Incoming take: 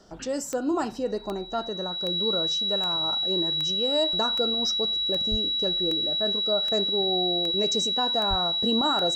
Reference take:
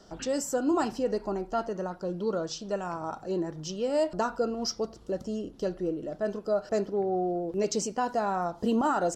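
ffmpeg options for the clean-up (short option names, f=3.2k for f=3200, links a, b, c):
-filter_complex "[0:a]adeclick=t=4,bandreject=f=3.9k:w=30,asplit=3[a][b][c];[a]afade=t=out:st=5.3:d=0.02[d];[b]highpass=f=140:w=0.5412,highpass=f=140:w=1.3066,afade=t=in:st=5.3:d=0.02,afade=t=out:st=5.42:d=0.02[e];[c]afade=t=in:st=5.42:d=0.02[f];[d][e][f]amix=inputs=3:normalize=0,asplit=3[g][h][i];[g]afade=t=out:st=8.29:d=0.02[j];[h]highpass=f=140:w=0.5412,highpass=f=140:w=1.3066,afade=t=in:st=8.29:d=0.02,afade=t=out:st=8.41:d=0.02[k];[i]afade=t=in:st=8.41:d=0.02[l];[j][k][l]amix=inputs=3:normalize=0"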